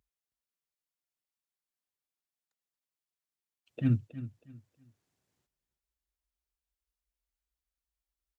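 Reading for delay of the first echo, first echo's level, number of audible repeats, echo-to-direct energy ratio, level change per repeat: 319 ms, −14.0 dB, 2, −13.5 dB, −11.5 dB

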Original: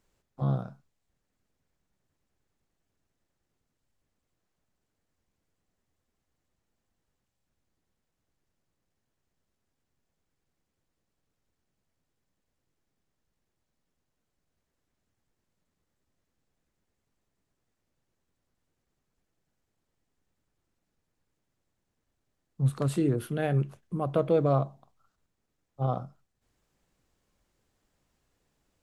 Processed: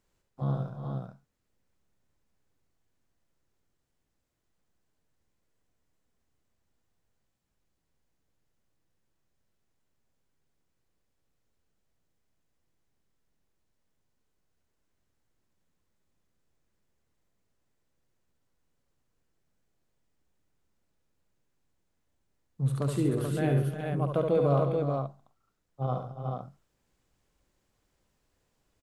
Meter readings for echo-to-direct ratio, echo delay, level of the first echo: −0.5 dB, 70 ms, −5.0 dB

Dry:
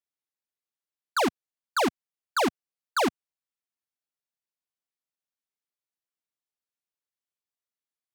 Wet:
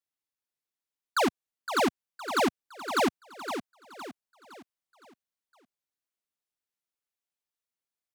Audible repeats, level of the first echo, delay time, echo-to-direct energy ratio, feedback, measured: 4, −9.0 dB, 513 ms, −8.0 dB, 41%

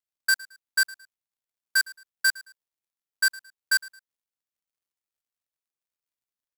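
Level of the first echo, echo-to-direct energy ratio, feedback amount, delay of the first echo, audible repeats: −21.0 dB, −20.5 dB, 31%, 110 ms, 2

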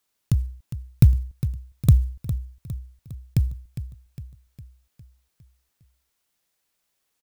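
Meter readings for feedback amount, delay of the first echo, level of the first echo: 53%, 407 ms, −12.0 dB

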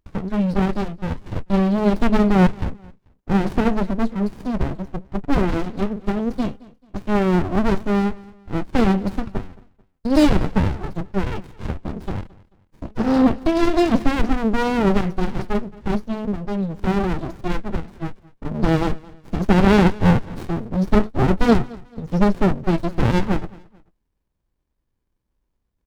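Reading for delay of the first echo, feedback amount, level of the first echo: 219 ms, 34%, −22.0 dB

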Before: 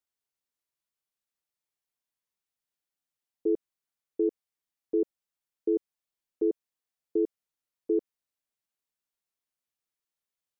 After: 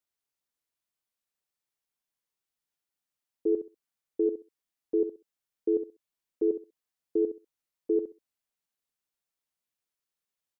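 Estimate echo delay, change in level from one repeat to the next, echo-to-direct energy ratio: 65 ms, −14.5 dB, −10.0 dB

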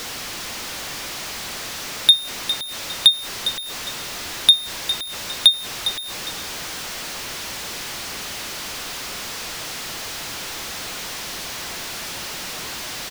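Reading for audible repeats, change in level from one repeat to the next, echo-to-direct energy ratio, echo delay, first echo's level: 2, −10.5 dB, −11.0 dB, 406 ms, −11.5 dB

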